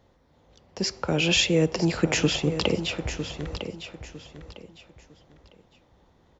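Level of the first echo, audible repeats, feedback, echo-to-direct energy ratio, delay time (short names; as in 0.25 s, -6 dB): -10.0 dB, 3, 28%, -9.5 dB, 0.954 s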